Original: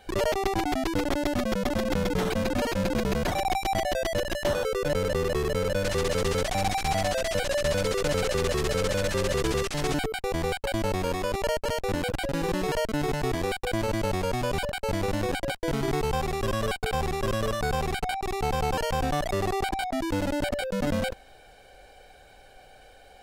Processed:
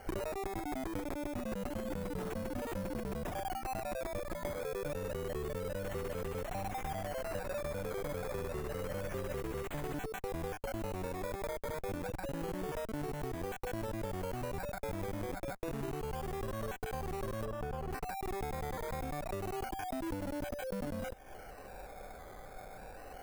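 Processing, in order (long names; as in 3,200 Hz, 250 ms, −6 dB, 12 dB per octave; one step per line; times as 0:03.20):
sample-and-hold swept by an LFO 12×, swing 60% 0.28 Hz
parametric band 4,400 Hz −8.5 dB 1.9 octaves
downward compressor 16 to 1, threshold −39 dBFS, peak gain reduction 18 dB
0:17.45–0:17.91: high-shelf EQ 2,500 Hz −11 dB
level +4 dB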